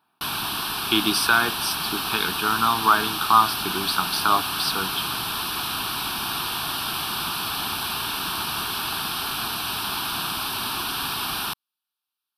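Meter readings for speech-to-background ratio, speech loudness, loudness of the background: 3.5 dB, -22.5 LUFS, -26.0 LUFS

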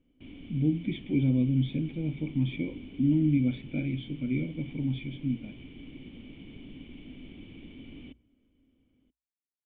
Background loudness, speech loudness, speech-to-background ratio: -47.5 LUFS, -30.0 LUFS, 17.5 dB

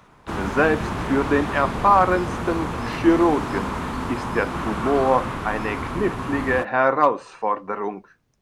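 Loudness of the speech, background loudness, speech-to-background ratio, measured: -22.0 LUFS, -28.0 LUFS, 6.0 dB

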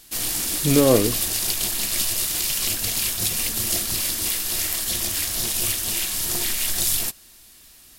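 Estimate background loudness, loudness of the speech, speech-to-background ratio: -21.5 LUFS, -20.0 LUFS, 1.5 dB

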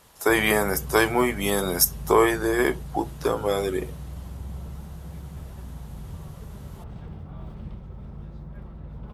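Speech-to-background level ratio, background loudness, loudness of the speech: 16.0 dB, -39.0 LUFS, -23.0 LUFS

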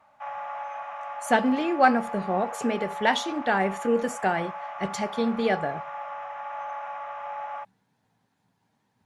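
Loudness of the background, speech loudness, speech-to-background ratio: -36.0 LUFS, -26.0 LUFS, 10.0 dB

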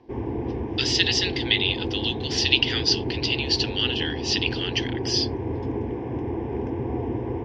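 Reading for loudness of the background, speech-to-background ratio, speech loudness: -29.5 LUFS, 6.0 dB, -23.5 LUFS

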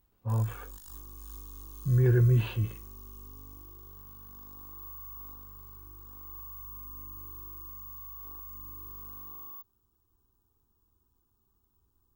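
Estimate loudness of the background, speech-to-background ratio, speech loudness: -44.0 LUFS, 17.0 dB, -27.0 LUFS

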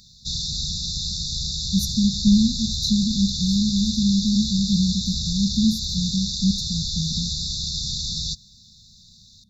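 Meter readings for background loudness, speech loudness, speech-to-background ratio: -25.5 LUFS, -23.0 LUFS, 2.5 dB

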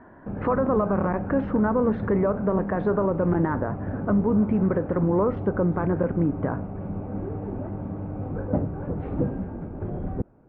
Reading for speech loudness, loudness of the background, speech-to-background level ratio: -24.5 LUFS, -32.0 LUFS, 7.5 dB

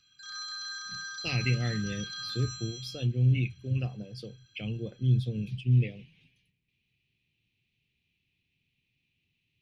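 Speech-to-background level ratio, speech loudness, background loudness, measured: 8.0 dB, -30.5 LUFS, -38.5 LUFS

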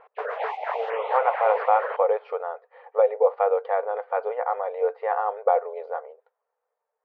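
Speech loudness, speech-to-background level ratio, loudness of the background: -25.0 LUFS, 5.5 dB, -30.5 LUFS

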